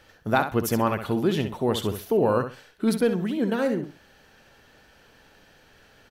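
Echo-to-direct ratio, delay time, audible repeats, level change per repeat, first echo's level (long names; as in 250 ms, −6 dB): −9.0 dB, 65 ms, 2, −14.0 dB, −9.0 dB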